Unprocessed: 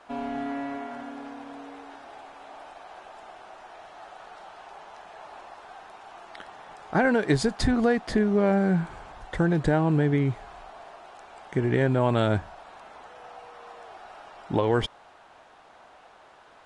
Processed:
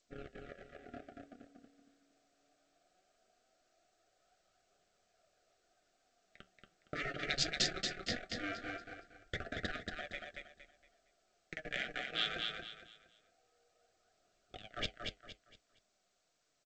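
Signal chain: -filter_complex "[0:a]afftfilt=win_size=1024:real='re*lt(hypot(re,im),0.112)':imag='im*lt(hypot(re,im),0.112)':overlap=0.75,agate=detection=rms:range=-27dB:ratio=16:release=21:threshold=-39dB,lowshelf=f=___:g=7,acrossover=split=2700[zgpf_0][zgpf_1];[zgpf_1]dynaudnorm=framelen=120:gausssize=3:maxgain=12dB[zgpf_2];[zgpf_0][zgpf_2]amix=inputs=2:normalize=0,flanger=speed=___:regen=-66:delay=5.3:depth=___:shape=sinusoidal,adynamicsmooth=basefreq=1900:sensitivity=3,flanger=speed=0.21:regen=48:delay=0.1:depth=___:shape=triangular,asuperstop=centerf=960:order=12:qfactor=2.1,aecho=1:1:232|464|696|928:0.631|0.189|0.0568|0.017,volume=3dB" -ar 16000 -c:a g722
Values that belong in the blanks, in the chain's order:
500, 0.69, 8.4, 7.1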